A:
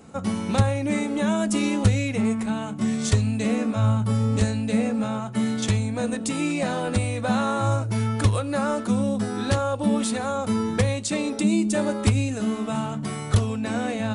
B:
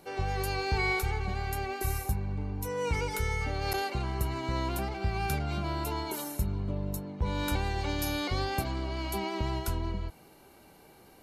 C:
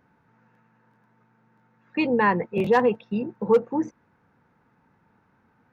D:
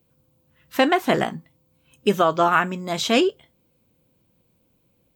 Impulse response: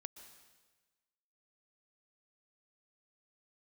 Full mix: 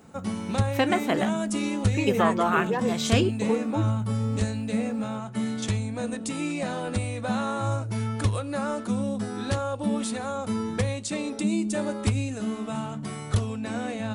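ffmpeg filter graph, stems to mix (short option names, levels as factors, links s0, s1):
-filter_complex "[0:a]volume=0.596[s0];[2:a]acompressor=threshold=0.0501:ratio=6,volume=1.12[s1];[3:a]volume=0.501[s2];[s0][s1][s2]amix=inputs=3:normalize=0"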